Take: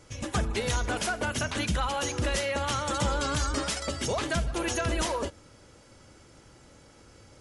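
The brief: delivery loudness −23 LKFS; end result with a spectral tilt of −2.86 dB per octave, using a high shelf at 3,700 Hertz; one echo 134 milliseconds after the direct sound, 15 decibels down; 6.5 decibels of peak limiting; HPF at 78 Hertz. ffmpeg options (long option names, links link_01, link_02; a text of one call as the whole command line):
ffmpeg -i in.wav -af "highpass=78,highshelf=frequency=3700:gain=5,alimiter=limit=-21.5dB:level=0:latency=1,aecho=1:1:134:0.178,volume=7.5dB" out.wav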